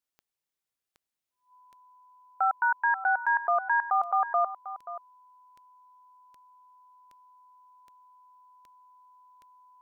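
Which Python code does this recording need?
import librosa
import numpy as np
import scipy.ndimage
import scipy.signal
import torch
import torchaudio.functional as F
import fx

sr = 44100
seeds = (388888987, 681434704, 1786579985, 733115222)

y = fx.fix_declick_ar(x, sr, threshold=10.0)
y = fx.notch(y, sr, hz=1000.0, q=30.0)
y = fx.fix_echo_inverse(y, sr, delay_ms=531, level_db=-13.5)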